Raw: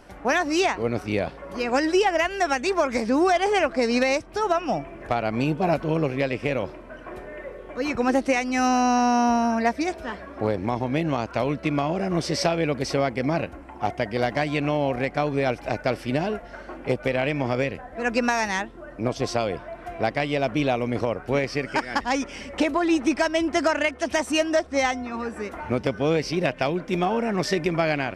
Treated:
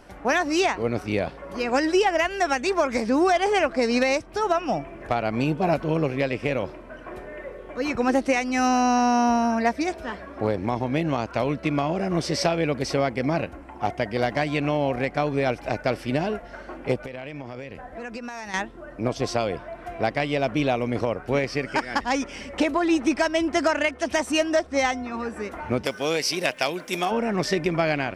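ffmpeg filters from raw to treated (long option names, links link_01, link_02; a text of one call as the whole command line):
ffmpeg -i in.wav -filter_complex "[0:a]asettb=1/sr,asplit=3[link_01][link_02][link_03];[link_01]atrim=end=17.014[link_04];[link_02]atrim=start=17.01:end=18.54,asetpts=PTS-STARTPTS,afade=type=in:duration=0.004:curve=qsin,afade=type=out:start_time=1.526:duration=0.004:curve=qsin,acompressor=threshold=-31dB:ratio=10:attack=3.2:release=140:knee=1:detection=peak[link_05];[link_03]atrim=start=18.536[link_06];[link_04][link_05]acrossfade=duration=0.004:curve1=hsin:curve2=qsin[link_07];[link_07][link_06]acrossfade=duration=0.004:curve1=qsin:curve2=hsin,asplit=3[link_08][link_09][link_10];[link_08]afade=type=out:start_time=25.84:duration=0.02[link_11];[link_09]aemphasis=mode=production:type=riaa,afade=type=in:start_time=25.84:duration=0.02,afade=type=out:start_time=27.1:duration=0.02[link_12];[link_10]afade=type=in:start_time=27.1:duration=0.02[link_13];[link_11][link_12][link_13]amix=inputs=3:normalize=0" out.wav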